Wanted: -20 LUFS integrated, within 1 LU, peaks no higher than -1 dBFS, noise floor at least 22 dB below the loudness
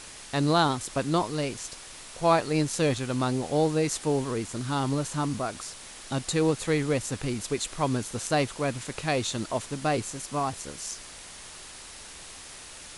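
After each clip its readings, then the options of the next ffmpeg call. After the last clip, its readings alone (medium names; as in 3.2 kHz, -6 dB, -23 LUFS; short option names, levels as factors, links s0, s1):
noise floor -45 dBFS; noise floor target -50 dBFS; loudness -28.0 LUFS; peak level -9.5 dBFS; loudness target -20.0 LUFS
-> -af "afftdn=nr=6:nf=-45"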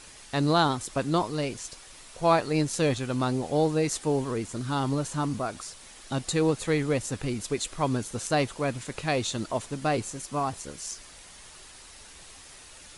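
noise floor -49 dBFS; noise floor target -50 dBFS
-> -af "afftdn=nr=6:nf=-49"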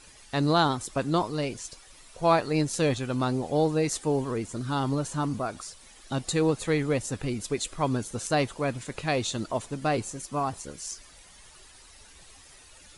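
noise floor -52 dBFS; loudness -28.0 LUFS; peak level -9.5 dBFS; loudness target -20.0 LUFS
-> -af "volume=2.51"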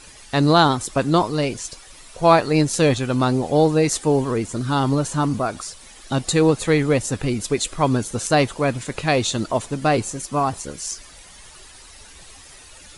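loudness -20.0 LUFS; peak level -1.5 dBFS; noise floor -44 dBFS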